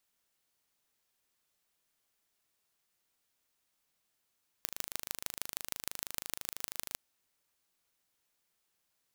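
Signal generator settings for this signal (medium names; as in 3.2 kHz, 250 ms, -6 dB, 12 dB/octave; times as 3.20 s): pulse train 26.1 per s, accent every 4, -6.5 dBFS 2.32 s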